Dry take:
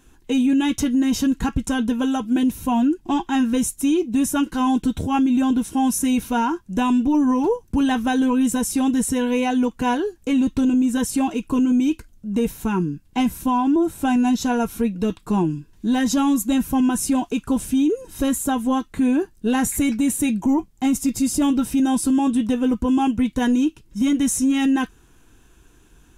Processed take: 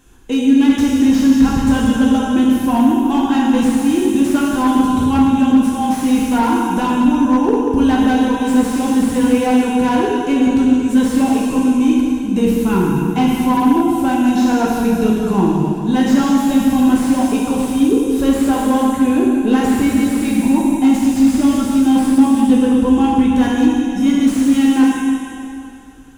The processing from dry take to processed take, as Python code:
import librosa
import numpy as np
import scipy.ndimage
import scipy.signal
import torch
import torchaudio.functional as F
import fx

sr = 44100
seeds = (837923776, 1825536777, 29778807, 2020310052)

p1 = fx.rider(x, sr, range_db=10, speed_s=0.5)
p2 = x + F.gain(torch.from_numpy(p1), 1.0).numpy()
p3 = fx.rev_plate(p2, sr, seeds[0], rt60_s=2.7, hf_ratio=0.85, predelay_ms=0, drr_db=-3.5)
p4 = fx.slew_limit(p3, sr, full_power_hz=360.0)
y = F.gain(torch.from_numpy(p4), -5.5).numpy()